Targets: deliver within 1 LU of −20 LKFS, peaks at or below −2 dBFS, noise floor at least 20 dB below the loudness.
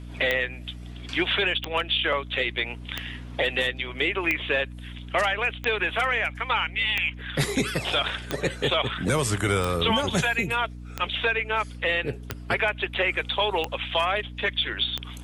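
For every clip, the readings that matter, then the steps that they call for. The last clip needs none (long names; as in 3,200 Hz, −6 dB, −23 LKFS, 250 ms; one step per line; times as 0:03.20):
number of clicks 12; mains hum 60 Hz; hum harmonics up to 300 Hz; level of the hum −36 dBFS; integrated loudness −25.5 LKFS; sample peak −8.5 dBFS; target loudness −20.0 LKFS
→ click removal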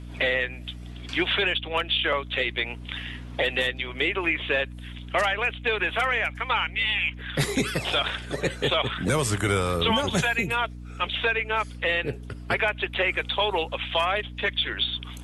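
number of clicks 0; mains hum 60 Hz; hum harmonics up to 300 Hz; level of the hum −36 dBFS
→ mains-hum notches 60/120/180/240/300 Hz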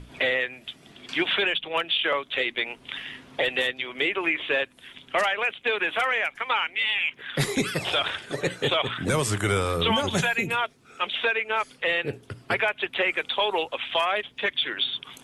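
mains hum none found; integrated loudness −25.5 LKFS; sample peak −12.0 dBFS; target loudness −20.0 LKFS
→ level +5.5 dB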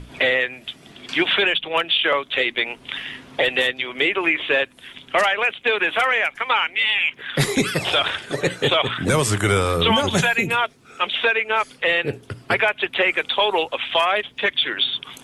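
integrated loudness −20.0 LKFS; sample peak −6.5 dBFS; background noise floor −50 dBFS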